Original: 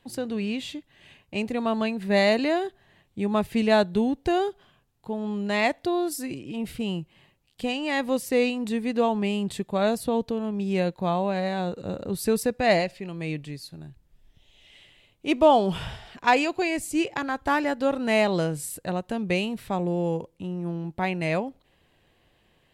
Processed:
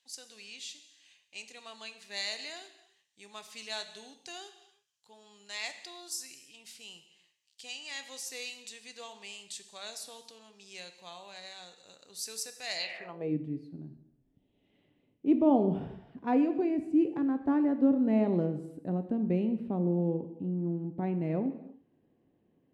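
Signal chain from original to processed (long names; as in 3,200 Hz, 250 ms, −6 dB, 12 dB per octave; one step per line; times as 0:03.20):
reverb whose tail is shaped and stops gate 360 ms falling, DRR 8.5 dB
band-pass filter sweep 6,100 Hz → 260 Hz, 0:12.75–0:13.36
level +3.5 dB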